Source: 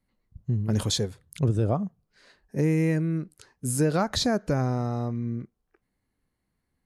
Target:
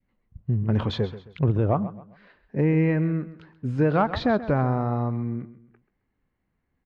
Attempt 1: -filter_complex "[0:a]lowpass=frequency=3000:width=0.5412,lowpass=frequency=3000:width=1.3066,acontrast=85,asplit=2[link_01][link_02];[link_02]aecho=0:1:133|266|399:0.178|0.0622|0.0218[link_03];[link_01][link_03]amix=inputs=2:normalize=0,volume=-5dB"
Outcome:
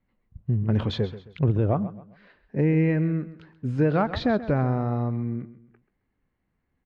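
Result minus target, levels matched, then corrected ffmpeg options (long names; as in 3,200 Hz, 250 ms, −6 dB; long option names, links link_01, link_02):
1,000 Hz band −3.0 dB
-filter_complex "[0:a]lowpass=frequency=3000:width=0.5412,lowpass=frequency=3000:width=1.3066,adynamicequalizer=threshold=0.00891:dfrequency=1000:dqfactor=1.4:tfrequency=1000:tqfactor=1.4:attack=5:release=100:ratio=0.438:range=2.5:mode=boostabove:tftype=bell,acontrast=85,asplit=2[link_01][link_02];[link_02]aecho=0:1:133|266|399:0.178|0.0622|0.0218[link_03];[link_01][link_03]amix=inputs=2:normalize=0,volume=-5dB"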